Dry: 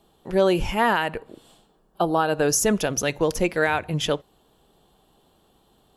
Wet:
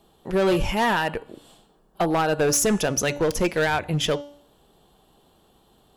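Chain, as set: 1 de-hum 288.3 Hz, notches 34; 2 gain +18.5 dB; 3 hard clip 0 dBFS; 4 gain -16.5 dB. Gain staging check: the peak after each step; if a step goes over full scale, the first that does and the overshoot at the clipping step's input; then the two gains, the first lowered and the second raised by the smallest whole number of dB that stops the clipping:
-9.0, +9.5, 0.0, -16.5 dBFS; step 2, 9.5 dB; step 2 +8.5 dB, step 4 -6.5 dB

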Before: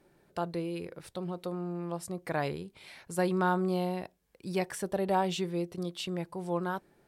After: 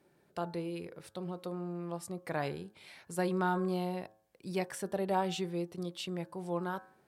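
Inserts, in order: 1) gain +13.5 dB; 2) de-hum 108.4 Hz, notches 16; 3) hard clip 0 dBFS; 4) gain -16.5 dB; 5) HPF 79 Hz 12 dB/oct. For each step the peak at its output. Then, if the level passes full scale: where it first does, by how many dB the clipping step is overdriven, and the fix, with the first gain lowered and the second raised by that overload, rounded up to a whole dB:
-3.0, -3.0, -3.0, -19.5, -18.5 dBFS; no overload

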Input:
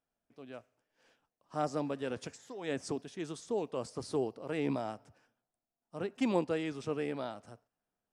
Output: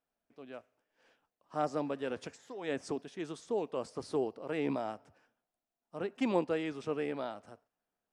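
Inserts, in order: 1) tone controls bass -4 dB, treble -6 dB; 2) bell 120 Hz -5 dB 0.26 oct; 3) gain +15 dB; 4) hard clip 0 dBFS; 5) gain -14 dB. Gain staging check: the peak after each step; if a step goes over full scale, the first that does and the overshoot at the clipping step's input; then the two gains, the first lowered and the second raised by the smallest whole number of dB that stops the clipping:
-17.5, -17.5, -2.5, -2.5, -16.5 dBFS; no overload

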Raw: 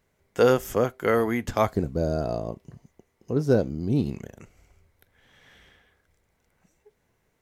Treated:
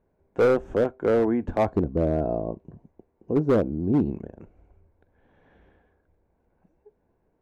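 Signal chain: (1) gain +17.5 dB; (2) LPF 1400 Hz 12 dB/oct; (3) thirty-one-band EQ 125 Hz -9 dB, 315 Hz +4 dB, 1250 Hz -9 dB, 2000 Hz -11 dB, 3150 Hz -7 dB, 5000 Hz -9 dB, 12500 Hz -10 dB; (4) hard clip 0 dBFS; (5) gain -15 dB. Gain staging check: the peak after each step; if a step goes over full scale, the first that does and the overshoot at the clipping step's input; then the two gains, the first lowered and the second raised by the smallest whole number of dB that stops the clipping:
+9.5, +9.0, +9.0, 0.0, -15.0 dBFS; step 1, 9.0 dB; step 1 +8.5 dB, step 5 -6 dB

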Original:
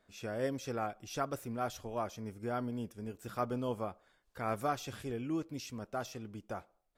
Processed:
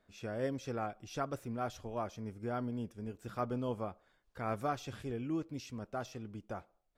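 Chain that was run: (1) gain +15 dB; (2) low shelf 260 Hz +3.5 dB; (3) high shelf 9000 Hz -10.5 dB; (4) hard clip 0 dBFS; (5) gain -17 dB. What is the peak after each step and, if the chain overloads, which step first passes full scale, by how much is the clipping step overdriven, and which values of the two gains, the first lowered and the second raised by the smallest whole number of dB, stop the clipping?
-5.0, -5.5, -5.5, -5.5, -22.5 dBFS; no overload

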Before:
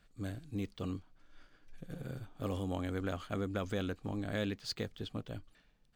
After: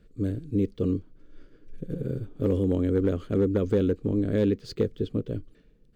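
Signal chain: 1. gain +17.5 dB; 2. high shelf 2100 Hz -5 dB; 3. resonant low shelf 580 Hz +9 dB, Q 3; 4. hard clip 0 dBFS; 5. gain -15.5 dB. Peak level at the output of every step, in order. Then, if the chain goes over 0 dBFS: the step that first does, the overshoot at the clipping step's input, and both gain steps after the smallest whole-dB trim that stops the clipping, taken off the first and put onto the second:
-5.0, -6.5, +3.5, 0.0, -15.5 dBFS; step 3, 3.5 dB; step 1 +13.5 dB, step 5 -11.5 dB

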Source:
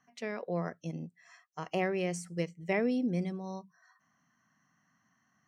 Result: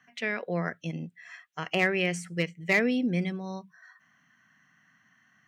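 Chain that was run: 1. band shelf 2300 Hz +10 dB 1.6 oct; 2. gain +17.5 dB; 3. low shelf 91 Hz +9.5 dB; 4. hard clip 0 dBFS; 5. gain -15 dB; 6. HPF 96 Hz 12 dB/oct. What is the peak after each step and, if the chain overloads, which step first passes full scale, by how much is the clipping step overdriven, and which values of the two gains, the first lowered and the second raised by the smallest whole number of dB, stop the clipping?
-11.5, +6.0, +6.0, 0.0, -15.0, -13.0 dBFS; step 2, 6.0 dB; step 2 +11.5 dB, step 5 -9 dB

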